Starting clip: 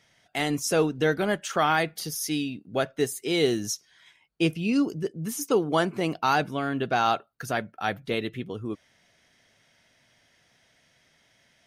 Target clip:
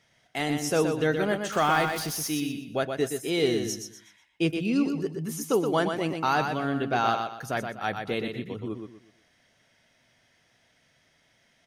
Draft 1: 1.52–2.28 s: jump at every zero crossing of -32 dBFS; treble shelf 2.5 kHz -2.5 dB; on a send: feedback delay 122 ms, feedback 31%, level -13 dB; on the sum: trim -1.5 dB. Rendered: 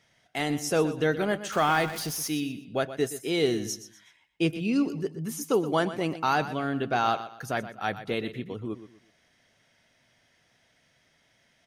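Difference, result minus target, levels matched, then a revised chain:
echo-to-direct -7 dB
1.52–2.28 s: jump at every zero crossing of -32 dBFS; treble shelf 2.5 kHz -2.5 dB; on a send: feedback delay 122 ms, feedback 31%, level -6 dB; on the sum: trim -1.5 dB

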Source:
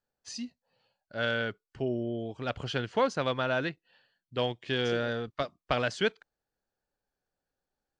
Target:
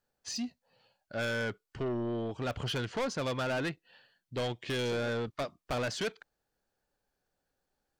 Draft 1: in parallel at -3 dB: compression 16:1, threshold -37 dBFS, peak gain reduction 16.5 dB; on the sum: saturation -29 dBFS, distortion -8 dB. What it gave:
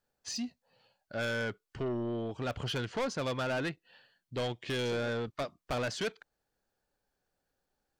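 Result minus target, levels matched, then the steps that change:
compression: peak gain reduction +6 dB
change: compression 16:1, threshold -30.5 dBFS, peak gain reduction 10.5 dB

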